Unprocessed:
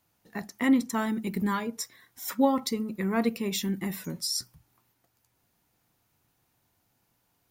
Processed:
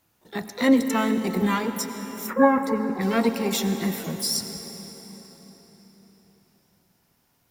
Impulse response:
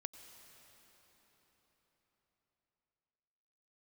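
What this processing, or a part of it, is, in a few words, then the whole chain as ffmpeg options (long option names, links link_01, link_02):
shimmer-style reverb: -filter_complex "[0:a]asplit=2[link_01][link_02];[link_02]asetrate=88200,aresample=44100,atempo=0.5,volume=-8dB[link_03];[link_01][link_03]amix=inputs=2:normalize=0[link_04];[1:a]atrim=start_sample=2205[link_05];[link_04][link_05]afir=irnorm=-1:irlink=0,asplit=3[link_06][link_07][link_08];[link_06]afade=type=out:start_time=2.26:duration=0.02[link_09];[link_07]highshelf=frequency=2600:width_type=q:width=1.5:gain=-13.5,afade=type=in:start_time=2.26:duration=0.02,afade=type=out:start_time=3:duration=0.02[link_10];[link_08]afade=type=in:start_time=3:duration=0.02[link_11];[link_09][link_10][link_11]amix=inputs=3:normalize=0,volume=8dB"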